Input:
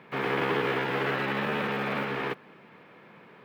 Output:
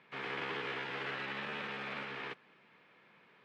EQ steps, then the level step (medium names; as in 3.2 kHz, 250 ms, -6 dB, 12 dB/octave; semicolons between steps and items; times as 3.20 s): distance through air 110 m; pre-emphasis filter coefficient 0.9; treble shelf 9 kHz -10.5 dB; +4.0 dB